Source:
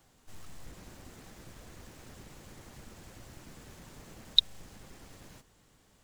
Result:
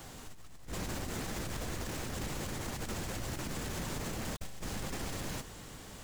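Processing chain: negative-ratio compressor -50 dBFS, ratio -0.5; limiter -39.5 dBFS, peak gain reduction 6.5 dB; gain +10.5 dB

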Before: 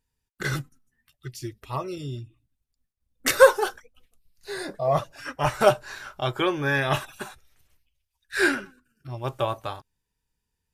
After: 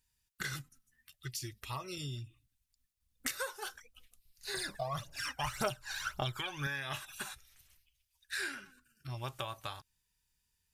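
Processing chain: passive tone stack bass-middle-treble 5-5-5; compressor 6:1, threshold -48 dBFS, peak gain reduction 21.5 dB; 4.54–6.67 phaser 1.8 Hz, delay 1.4 ms, feedback 68%; gain +11 dB

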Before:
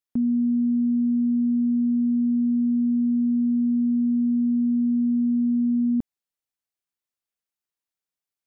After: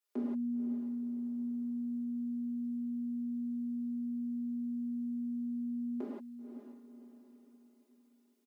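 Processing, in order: steep high-pass 300 Hz 48 dB/oct; comb 4.9 ms, depth 99%; diffused feedback echo 0.524 s, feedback 43%, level -9.5 dB; non-linear reverb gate 0.2 s flat, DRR -6.5 dB; gain -3 dB

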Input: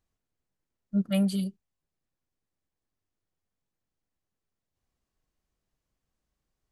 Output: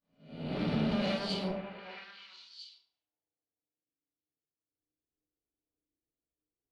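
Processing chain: spectral swells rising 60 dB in 1.11 s; expander -58 dBFS; bell 910 Hz +14 dB 2.5 oct; notch 900 Hz, Q 16; in parallel at +1 dB: negative-ratio compressor -36 dBFS; on the sum: limiter -21.5 dBFS, peak gain reduction 12 dB; added harmonics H 4 -14 dB, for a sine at -21.5 dBFS; low-pass sweep 4300 Hz -> 380 Hz, 1.35–3.52; on a send: delay with a stepping band-pass 0.434 s, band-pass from 720 Hz, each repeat 1.4 oct, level -3 dB; on the sum: FDN reverb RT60 0.66 s, low-frequency decay 1.45×, high-frequency decay 0.55×, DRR -3 dB; gain -8 dB

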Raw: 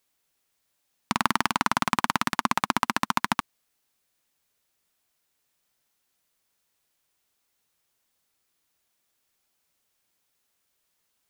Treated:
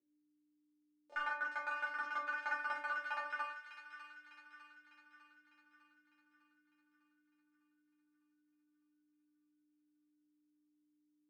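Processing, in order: gliding pitch shift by -5.5 st ending unshifted; high shelf 4400 Hz +7 dB; treble ducked by the level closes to 890 Hz, closed at -23 dBFS; sample gate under -14.5 dBFS; hum 60 Hz, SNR 23 dB; Chebyshev band-pass 230–9200 Hz; auto-wah 410–1500 Hz, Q 7.9, up, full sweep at -37 dBFS; metallic resonator 290 Hz, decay 0.32 s, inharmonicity 0.002; on a send: thin delay 0.602 s, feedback 54%, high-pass 2000 Hz, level -6.5 dB; on the sum: shoebox room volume 33 m³, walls mixed, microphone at 0.86 m; gain +14 dB

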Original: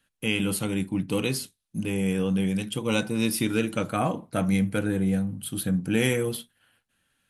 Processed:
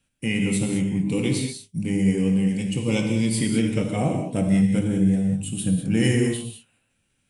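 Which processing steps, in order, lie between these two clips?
bell 1400 Hz -11.5 dB 0.81 oct; non-linear reverb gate 0.23 s flat, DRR 2 dB; formant shift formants -2 st; low shelf 350 Hz +4.5 dB

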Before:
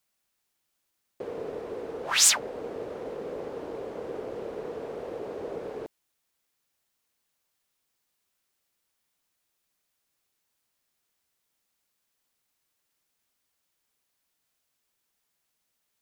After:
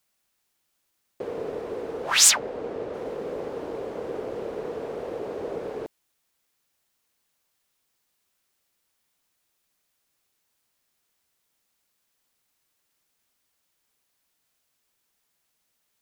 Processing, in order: 2.31–2.94 high shelf 7800 Hz -11 dB; gain +3.5 dB

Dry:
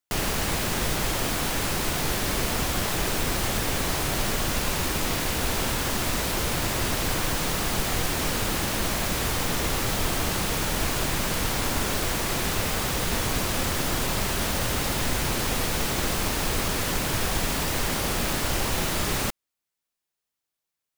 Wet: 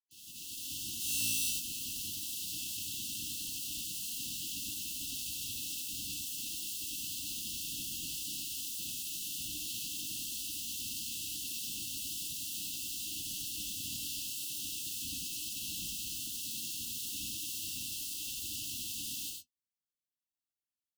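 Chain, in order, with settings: opening faded in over 1.51 s; flange 0.38 Hz, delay 5.7 ms, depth 9.5 ms, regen +32%; FFT band-reject 330–2600 Hz; low shelf 290 Hz -9 dB; spectral gate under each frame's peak -10 dB weak; limiter -32.5 dBFS, peak gain reduction 10 dB; 0.98–1.5 flutter echo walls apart 3 m, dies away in 1.4 s; non-linear reverb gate 0.12 s rising, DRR 1.5 dB

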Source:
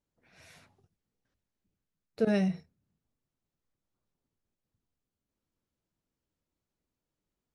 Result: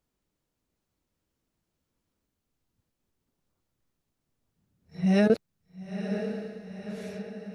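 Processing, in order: whole clip reversed; diffused feedback echo 0.965 s, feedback 57%, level -8.5 dB; gain +5.5 dB

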